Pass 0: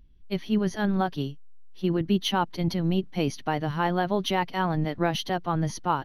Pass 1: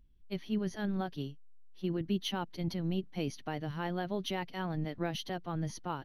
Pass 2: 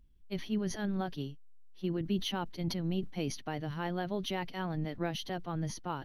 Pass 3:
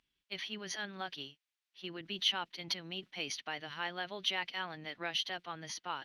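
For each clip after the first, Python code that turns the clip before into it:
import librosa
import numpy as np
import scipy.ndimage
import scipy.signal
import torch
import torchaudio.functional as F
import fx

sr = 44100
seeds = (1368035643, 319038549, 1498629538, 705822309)

y1 = fx.dynamic_eq(x, sr, hz=1000.0, q=1.3, threshold_db=-38.0, ratio=4.0, max_db=-6)
y1 = y1 * librosa.db_to_amplitude(-8.5)
y2 = fx.sustainer(y1, sr, db_per_s=100.0)
y3 = fx.bandpass_q(y2, sr, hz=2800.0, q=1.0)
y3 = y3 * librosa.db_to_amplitude(7.5)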